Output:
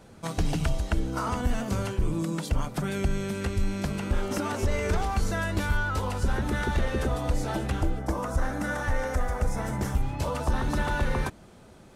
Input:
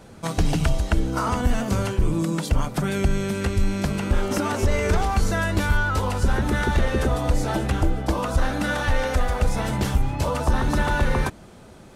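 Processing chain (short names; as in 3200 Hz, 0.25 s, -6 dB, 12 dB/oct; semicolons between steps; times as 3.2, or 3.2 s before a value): 7.99–9.95 band shelf 3400 Hz -8.5 dB 1.1 oct; gain -5.5 dB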